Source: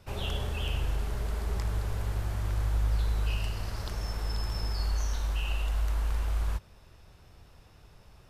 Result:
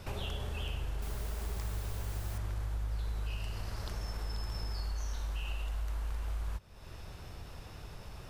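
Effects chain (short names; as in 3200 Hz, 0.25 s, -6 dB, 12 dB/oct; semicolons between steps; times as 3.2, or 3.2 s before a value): compressor 3:1, threshold -48 dBFS, peak gain reduction 18 dB; 1.02–2.38 requantised 10-bit, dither triangular; gain +8.5 dB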